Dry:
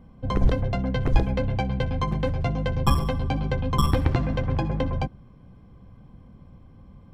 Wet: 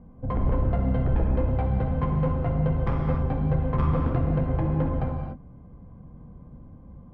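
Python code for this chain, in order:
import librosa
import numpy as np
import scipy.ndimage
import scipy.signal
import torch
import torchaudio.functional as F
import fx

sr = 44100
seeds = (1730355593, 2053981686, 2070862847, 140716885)

y = scipy.signal.sosfilt(scipy.signal.butter(2, 1100.0, 'lowpass', fs=sr, output='sos'), x)
y = 10.0 ** (-21.0 / 20.0) * np.tanh(y / 10.0 ** (-21.0 / 20.0))
y = fx.rev_gated(y, sr, seeds[0], gate_ms=310, shape='flat', drr_db=0.0)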